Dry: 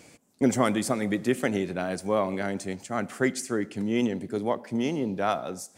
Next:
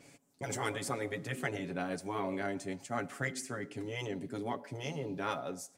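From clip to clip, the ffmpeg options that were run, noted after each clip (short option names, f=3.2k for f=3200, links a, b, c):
-af "afftfilt=real='re*lt(hypot(re,im),0.282)':imag='im*lt(hypot(re,im),0.282)':win_size=1024:overlap=0.75,aecho=1:1:7.2:0.56,adynamicequalizer=threshold=0.00708:dfrequency=3200:dqfactor=0.7:tfrequency=3200:tqfactor=0.7:attack=5:release=100:ratio=0.375:range=2:mode=cutabove:tftype=highshelf,volume=-6.5dB"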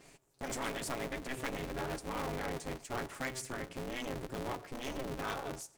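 -filter_complex "[0:a]asplit=2[a][b];[b]aeval=exprs='0.0224*(abs(mod(val(0)/0.0224+3,4)-2)-1)':c=same,volume=-5dB[c];[a][c]amix=inputs=2:normalize=0,aeval=exprs='val(0)*sgn(sin(2*PI*130*n/s))':c=same,volume=-4.5dB"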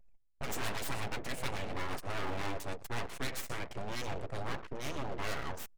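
-af "aecho=1:1:120:0.168,aeval=exprs='abs(val(0))':c=same,anlmdn=0.00158,volume=4.5dB"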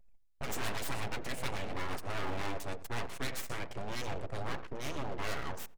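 -filter_complex "[0:a]asplit=2[a][b];[b]adelay=85,lowpass=f=990:p=1,volume=-15.5dB,asplit=2[c][d];[d]adelay=85,lowpass=f=990:p=1,volume=0.26,asplit=2[e][f];[f]adelay=85,lowpass=f=990:p=1,volume=0.26[g];[a][c][e][g]amix=inputs=4:normalize=0"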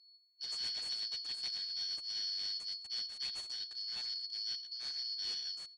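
-af "afftfilt=real='real(if(lt(b,272),68*(eq(floor(b/68),0)*3+eq(floor(b/68),1)*2+eq(floor(b/68),2)*1+eq(floor(b/68),3)*0)+mod(b,68),b),0)':imag='imag(if(lt(b,272),68*(eq(floor(b/68),0)*3+eq(floor(b/68),1)*2+eq(floor(b/68),2)*1+eq(floor(b/68),3)*0)+mod(b,68),b),0)':win_size=2048:overlap=0.75,aresample=22050,aresample=44100,volume=-8.5dB"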